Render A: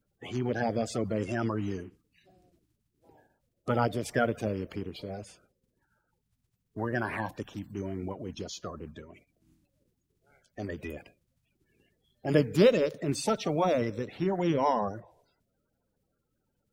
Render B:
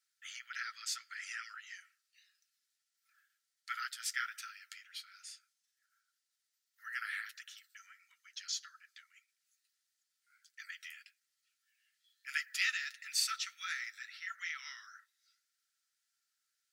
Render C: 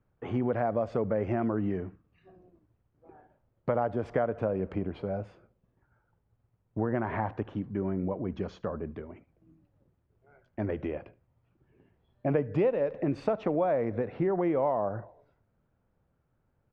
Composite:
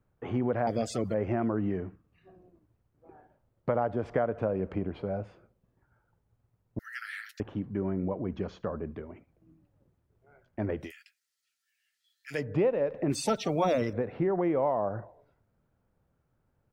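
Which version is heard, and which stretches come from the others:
C
0:00.67–0:01.14: punch in from A
0:06.79–0:07.40: punch in from B
0:10.84–0:12.38: punch in from B, crossfade 0.16 s
0:13.10–0:13.93: punch in from A

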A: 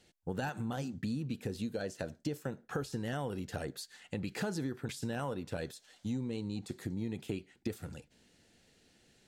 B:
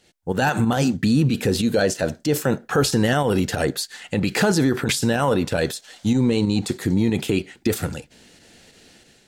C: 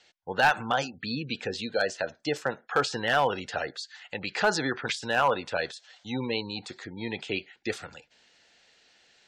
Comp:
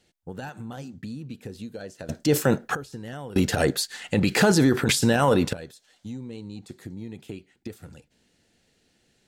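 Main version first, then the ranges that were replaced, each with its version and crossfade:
A
0:02.09–0:02.75: punch in from B
0:03.36–0:05.53: punch in from B
not used: C

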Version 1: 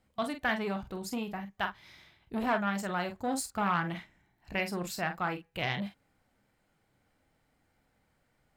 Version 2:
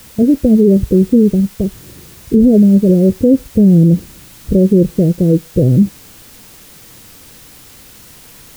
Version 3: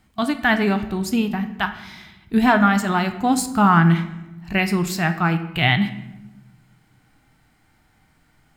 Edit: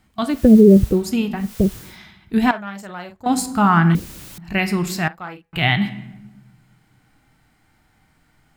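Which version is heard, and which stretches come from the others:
3
0:00.36–0:00.95: punch in from 2, crossfade 0.24 s
0:01.45–0:01.88: punch in from 2, crossfade 0.24 s
0:02.51–0:03.26: punch in from 1
0:03.95–0:04.38: punch in from 2
0:05.08–0:05.53: punch in from 1

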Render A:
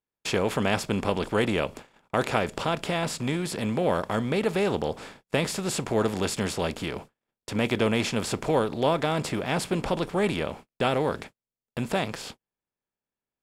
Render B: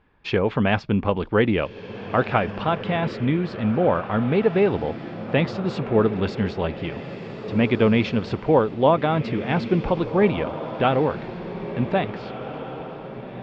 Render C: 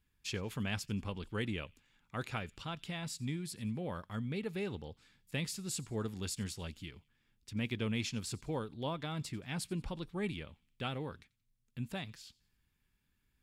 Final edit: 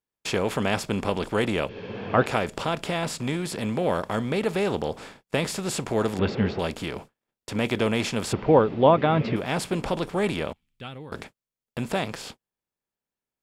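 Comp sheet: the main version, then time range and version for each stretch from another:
A
0:01.69–0:02.26: punch in from B
0:06.19–0:06.59: punch in from B
0:08.33–0:09.36: punch in from B
0:10.53–0:11.12: punch in from C

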